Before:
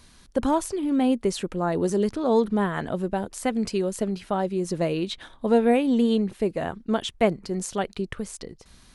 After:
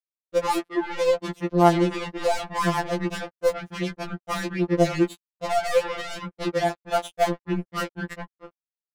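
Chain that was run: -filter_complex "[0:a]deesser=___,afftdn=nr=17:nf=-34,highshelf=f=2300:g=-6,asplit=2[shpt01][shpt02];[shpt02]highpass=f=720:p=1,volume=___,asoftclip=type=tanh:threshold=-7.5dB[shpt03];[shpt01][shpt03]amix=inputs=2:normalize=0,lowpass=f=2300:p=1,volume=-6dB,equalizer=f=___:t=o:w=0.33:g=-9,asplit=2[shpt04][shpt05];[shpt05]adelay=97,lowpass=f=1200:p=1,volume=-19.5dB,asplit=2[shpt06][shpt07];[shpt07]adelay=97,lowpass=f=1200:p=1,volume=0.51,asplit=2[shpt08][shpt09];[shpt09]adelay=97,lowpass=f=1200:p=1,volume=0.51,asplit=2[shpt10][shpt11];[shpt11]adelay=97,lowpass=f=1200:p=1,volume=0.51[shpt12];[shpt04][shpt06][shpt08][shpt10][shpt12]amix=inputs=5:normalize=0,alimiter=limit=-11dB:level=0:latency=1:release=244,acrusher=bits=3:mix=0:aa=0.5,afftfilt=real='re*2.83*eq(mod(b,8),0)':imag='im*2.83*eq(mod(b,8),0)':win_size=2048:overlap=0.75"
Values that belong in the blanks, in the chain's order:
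0.6, 17dB, 6200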